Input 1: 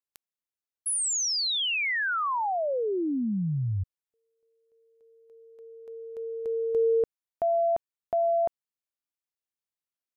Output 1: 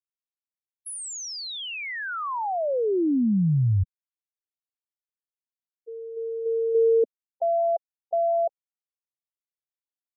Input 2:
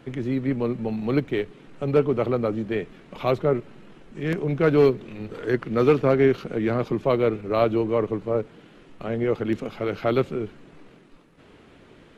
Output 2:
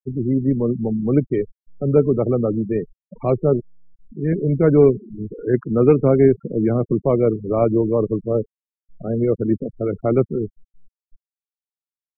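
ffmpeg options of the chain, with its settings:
ffmpeg -i in.wav -af "afftfilt=real='re*gte(hypot(re,im),0.0631)':imag='im*gte(hypot(re,im),0.0631)':win_size=1024:overlap=0.75,tiltshelf=frequency=860:gain=7.5" out.wav

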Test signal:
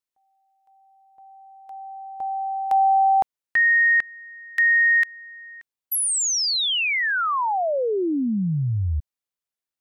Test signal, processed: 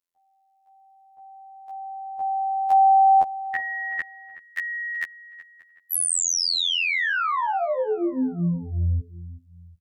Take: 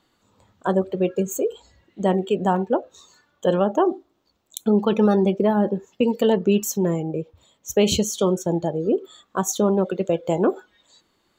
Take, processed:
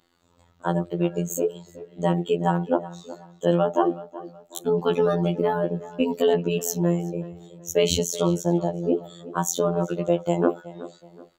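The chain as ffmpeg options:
ffmpeg -i in.wav -filter_complex "[0:a]afftfilt=real='hypot(re,im)*cos(PI*b)':imag='0':win_size=2048:overlap=0.75,asplit=2[link_01][link_02];[link_02]adelay=373,lowpass=frequency=2600:poles=1,volume=-16dB,asplit=2[link_03][link_04];[link_04]adelay=373,lowpass=frequency=2600:poles=1,volume=0.36,asplit=2[link_05][link_06];[link_06]adelay=373,lowpass=frequency=2600:poles=1,volume=0.36[link_07];[link_01][link_03][link_05][link_07]amix=inputs=4:normalize=0,volume=2dB" out.wav

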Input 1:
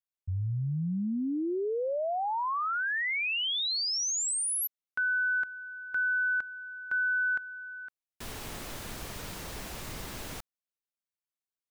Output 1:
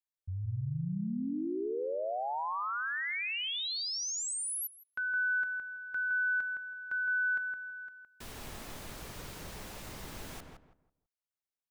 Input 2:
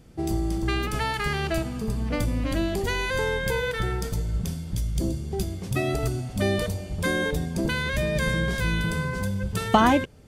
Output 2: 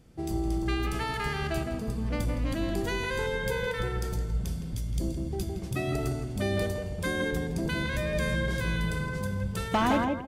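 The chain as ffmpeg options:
ffmpeg -i in.wav -filter_complex "[0:a]asplit=2[link_01][link_02];[link_02]adelay=164,lowpass=frequency=1600:poles=1,volume=-3.5dB,asplit=2[link_03][link_04];[link_04]adelay=164,lowpass=frequency=1600:poles=1,volume=0.28,asplit=2[link_05][link_06];[link_06]adelay=164,lowpass=frequency=1600:poles=1,volume=0.28,asplit=2[link_07][link_08];[link_08]adelay=164,lowpass=frequency=1600:poles=1,volume=0.28[link_09];[link_01][link_03][link_05][link_07][link_09]amix=inputs=5:normalize=0,asoftclip=type=hard:threshold=-13.5dB,volume=-5.5dB" out.wav

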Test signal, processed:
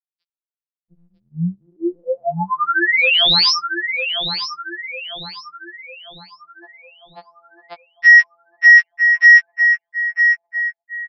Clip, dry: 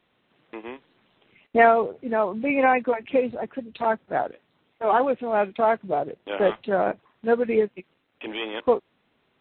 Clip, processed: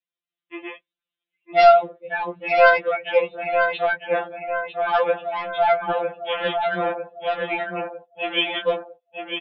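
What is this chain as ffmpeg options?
ffmpeg -i in.wav -filter_complex "[0:a]lowshelf=frequency=62:gain=-11.5,crystalizer=i=9:c=0,aresample=11025,volume=10dB,asoftclip=hard,volume=-10dB,aresample=44100,asplit=2[link_01][link_02];[link_02]adelay=951,lowpass=frequency=2900:poles=1,volume=-5dB,asplit=2[link_03][link_04];[link_04]adelay=951,lowpass=frequency=2900:poles=1,volume=0.52,asplit=2[link_05][link_06];[link_06]adelay=951,lowpass=frequency=2900:poles=1,volume=0.52,asplit=2[link_07][link_08];[link_08]adelay=951,lowpass=frequency=2900:poles=1,volume=0.52,asplit=2[link_09][link_10];[link_10]adelay=951,lowpass=frequency=2900:poles=1,volume=0.52,asplit=2[link_11][link_12];[link_12]adelay=951,lowpass=frequency=2900:poles=1,volume=0.52,asplit=2[link_13][link_14];[link_14]adelay=951,lowpass=frequency=2900:poles=1,volume=0.52[link_15];[link_01][link_03][link_05][link_07][link_09][link_11][link_13][link_15]amix=inputs=8:normalize=0,agate=range=-9dB:threshold=-39dB:ratio=16:detection=peak,bandreject=frequency=910:width=8.2,afftdn=noise_reduction=25:noise_floor=-40,afftfilt=real='re*2.83*eq(mod(b,8),0)':imag='im*2.83*eq(mod(b,8),0)':win_size=2048:overlap=0.75" out.wav

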